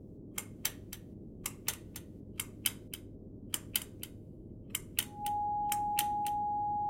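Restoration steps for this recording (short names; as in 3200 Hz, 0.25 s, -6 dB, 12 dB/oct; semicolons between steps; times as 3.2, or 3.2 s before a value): de-hum 102.7 Hz, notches 6; notch 830 Hz, Q 30; noise print and reduce 30 dB; inverse comb 0.276 s -12.5 dB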